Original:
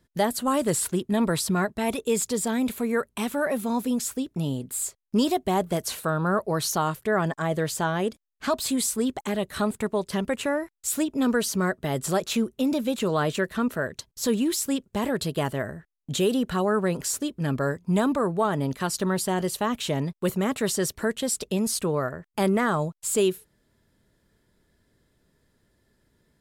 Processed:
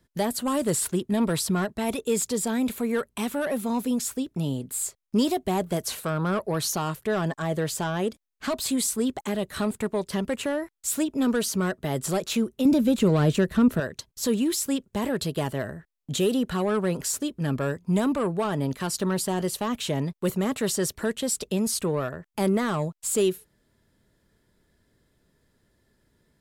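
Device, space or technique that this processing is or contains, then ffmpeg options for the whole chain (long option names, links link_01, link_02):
one-band saturation: -filter_complex "[0:a]asettb=1/sr,asplit=3[link_01][link_02][link_03];[link_01]atrim=end=12.654[link_04];[link_02]atrim=start=12.65:end=13.8,asetpts=PTS-STARTPTS,afade=type=in:duration=0.004:curve=qsin,afade=type=out:start_time=1.146:duration=0.004:curve=qsin,lowshelf=frequency=300:gain=11.5[link_05];[link_03]atrim=start=13.796[link_06];[link_04][link_05]acrossfade=duration=0.004:curve1=hsin:curve2=qsin[link_07];[link_07][link_06]acrossfade=duration=0.004:curve1=qsin:curve2=hsin,acrossover=split=480|4000[link_08][link_09][link_10];[link_09]asoftclip=type=tanh:threshold=-25.5dB[link_11];[link_08][link_11][link_10]amix=inputs=3:normalize=0"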